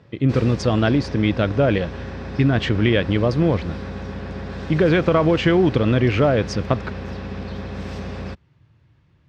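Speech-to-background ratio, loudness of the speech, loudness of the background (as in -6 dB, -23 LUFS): 12.5 dB, -19.5 LUFS, -32.0 LUFS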